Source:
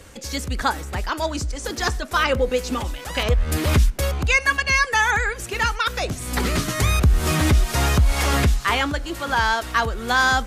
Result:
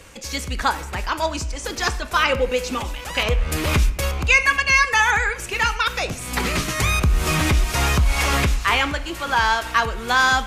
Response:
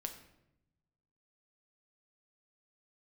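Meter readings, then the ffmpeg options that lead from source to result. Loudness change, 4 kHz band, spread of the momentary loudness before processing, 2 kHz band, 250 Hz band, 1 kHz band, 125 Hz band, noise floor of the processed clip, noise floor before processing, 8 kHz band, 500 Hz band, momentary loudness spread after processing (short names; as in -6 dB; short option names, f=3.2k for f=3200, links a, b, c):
+1.0 dB, +2.0 dB, 9 LU, +2.0 dB, -2.0 dB, +1.5 dB, -2.0 dB, -33 dBFS, -35 dBFS, +1.0 dB, -0.5 dB, 10 LU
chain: -filter_complex "[0:a]asplit=2[a][b];[b]equalizer=f=100:t=o:w=0.67:g=-12,equalizer=f=250:t=o:w=0.67:g=-6,equalizer=f=1k:t=o:w=0.67:g=6,equalizer=f=2.5k:t=o:w=0.67:g=11,equalizer=f=6.3k:t=o:w=0.67:g=4[c];[1:a]atrim=start_sample=2205[d];[c][d]afir=irnorm=-1:irlink=0,volume=-2.5dB[e];[a][e]amix=inputs=2:normalize=0,volume=-4dB"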